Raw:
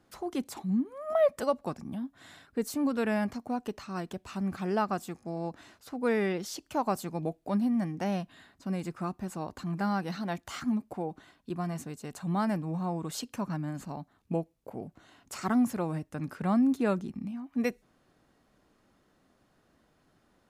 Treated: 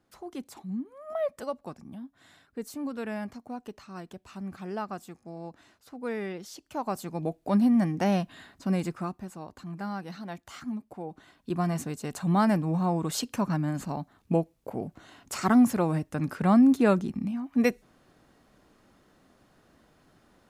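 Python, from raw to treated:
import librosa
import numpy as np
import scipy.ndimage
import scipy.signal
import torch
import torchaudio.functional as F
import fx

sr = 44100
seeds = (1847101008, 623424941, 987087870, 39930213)

y = fx.gain(x, sr, db=fx.line((6.57, -5.5), (7.63, 6.0), (8.8, 6.0), (9.34, -5.0), (10.95, -5.0), (11.58, 6.0)))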